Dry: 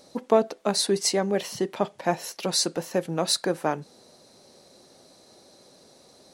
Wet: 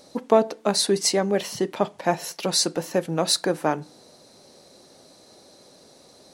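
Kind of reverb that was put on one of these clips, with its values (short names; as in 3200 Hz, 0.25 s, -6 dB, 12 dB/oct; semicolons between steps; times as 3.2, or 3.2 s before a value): FDN reverb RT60 0.44 s, low-frequency decay 1.35×, high-frequency decay 0.6×, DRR 20 dB; gain +2.5 dB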